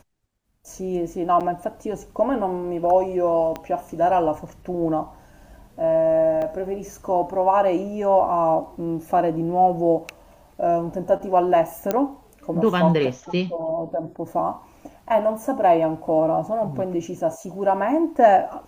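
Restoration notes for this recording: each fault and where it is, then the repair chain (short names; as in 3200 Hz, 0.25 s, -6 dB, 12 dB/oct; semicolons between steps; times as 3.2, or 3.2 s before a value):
1.4–1.41 gap 7 ms
3.56 pop -16 dBFS
6.42 gap 2.6 ms
11.91 pop -8 dBFS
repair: de-click; interpolate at 1.4, 7 ms; interpolate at 6.42, 2.6 ms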